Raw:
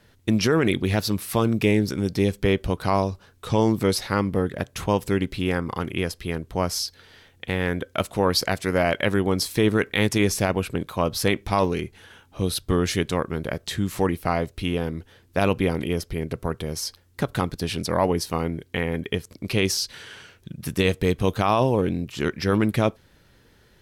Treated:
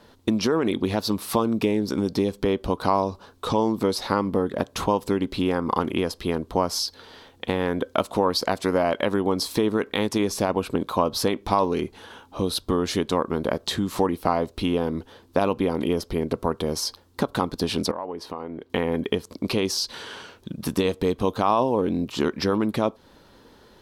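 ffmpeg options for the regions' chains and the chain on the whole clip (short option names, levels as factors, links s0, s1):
-filter_complex "[0:a]asettb=1/sr,asplit=3[s0][s1][s2];[s0]atrim=end=17.914[s3];[s1]atrim=start=17.91:end=18.7,asetpts=PTS-STARTPTS,afade=t=in:d=0.004:c=qsin,afade=t=out:st=0.786:d=0.004:c=qsin,bass=f=250:g=-8,treble=f=4000:g=-15,acompressor=threshold=0.0178:ratio=16:attack=3.2:release=140:knee=1:detection=peak[s4];[s2]atrim=start=18.696[s5];[s3][s4]acrossfade=d=0.004:c1=hsin:c2=qsin[s6];[s6][s5]acrossfade=d=0.004:c1=qsin:c2=hsin,acompressor=threshold=0.0562:ratio=6,equalizer=f=125:t=o:w=1:g=-4,equalizer=f=250:t=o:w=1:g=8,equalizer=f=500:t=o:w=1:g=5,equalizer=f=1000:t=o:w=1:g=11,equalizer=f=2000:t=o:w=1:g=-4,equalizer=f=4000:t=o:w=1:g=6"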